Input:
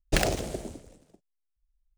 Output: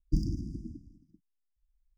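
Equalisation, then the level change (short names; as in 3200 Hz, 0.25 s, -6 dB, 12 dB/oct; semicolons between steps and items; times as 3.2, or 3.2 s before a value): brick-wall FIR band-stop 340–4700 Hz; air absorption 310 m; 0.0 dB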